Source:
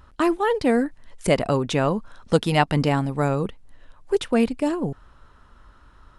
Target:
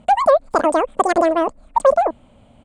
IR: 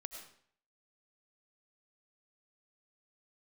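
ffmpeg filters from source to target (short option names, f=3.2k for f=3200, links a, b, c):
-af "asetrate=103194,aresample=44100,firequalizer=gain_entry='entry(160,0);entry(230,15);entry(370,3);entry(580,14);entry(1400,1);entry(2200,-5);entry(5800,-10);entry(8500,4);entry(13000,-27)':delay=0.05:min_phase=1,volume=-2.5dB"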